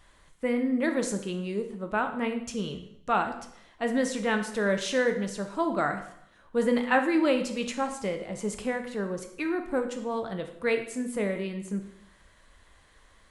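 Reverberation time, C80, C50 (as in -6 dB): 0.75 s, 12.0 dB, 9.5 dB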